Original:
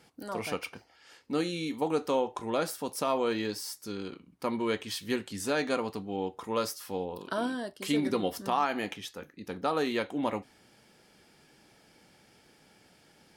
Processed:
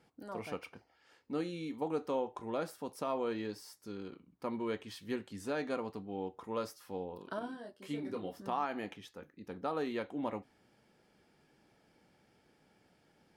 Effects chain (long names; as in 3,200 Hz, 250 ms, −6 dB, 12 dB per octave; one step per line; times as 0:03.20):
high-shelf EQ 2,500 Hz −9.5 dB
0:07.39–0:08.40: micro pitch shift up and down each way 23 cents
level −6 dB